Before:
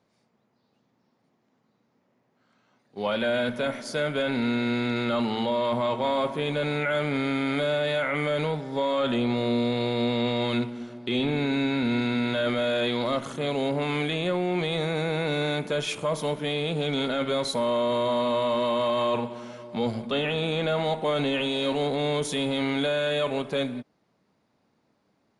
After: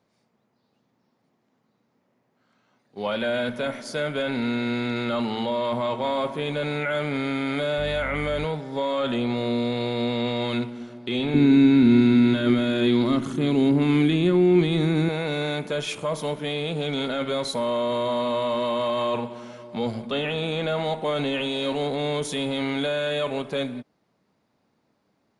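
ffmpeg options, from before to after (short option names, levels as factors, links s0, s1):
-filter_complex "[0:a]asettb=1/sr,asplit=3[s0][s1][s2];[s0]atrim=end=7.784[s3];[s1]atrim=start=7.78:end=8.45,asetpts=PTS-STARTPTS,afade=t=in:d=0.004:c=qsin,afade=t=out:st=0.666:d=0.004:c=qsin,aeval=exprs='val(0)+0.02*(sin(2*PI*50*n/s)+sin(2*PI*2*50*n/s)/2+sin(2*PI*3*50*n/s)/3+sin(2*PI*4*50*n/s)/4+sin(2*PI*5*50*n/s)/5)':c=same[s4];[s2]atrim=start=8.446[s5];[s3][s4]acrossfade=d=0.004:c1=hsin:c2=qsin[s6];[s6][s5]acrossfade=d=0.004:c1=qsin:c2=hsin,asettb=1/sr,asplit=3[s7][s8][s9];[s7]atrim=end=11.344[s10];[s8]atrim=start=11.34:end=15.09,asetpts=PTS-STARTPTS,afade=t=in:d=0.004:c=qsin,afade=t=out:st=3.746:d=0.004:c=qsin,lowshelf=f=420:t=q:w=3:g=7[s11];[s9]atrim=start=15.086[s12];[s10][s11]acrossfade=d=0.004:c1=hsin:c2=qsin[s13];[s13][s12]acrossfade=d=0.004:c1=qsin:c2=hsin"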